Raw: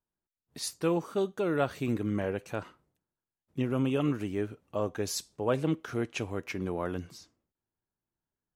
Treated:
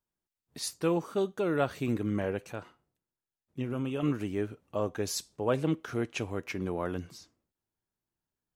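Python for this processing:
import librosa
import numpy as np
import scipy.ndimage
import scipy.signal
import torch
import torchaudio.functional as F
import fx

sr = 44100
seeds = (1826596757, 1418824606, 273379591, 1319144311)

y = fx.comb_fb(x, sr, f0_hz=120.0, decay_s=0.3, harmonics='all', damping=0.0, mix_pct=50, at=(2.52, 4.03))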